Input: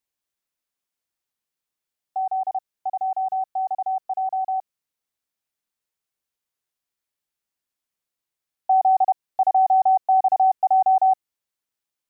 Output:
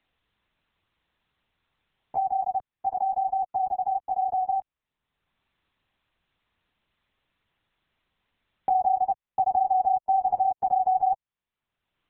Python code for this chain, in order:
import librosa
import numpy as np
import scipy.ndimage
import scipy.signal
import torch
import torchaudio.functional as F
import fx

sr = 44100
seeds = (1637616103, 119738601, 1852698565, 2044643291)

y = fx.lpc_vocoder(x, sr, seeds[0], excitation='whisper', order=8)
y = fx.band_squash(y, sr, depth_pct=70)
y = y * 10.0 ** (-5.0 / 20.0)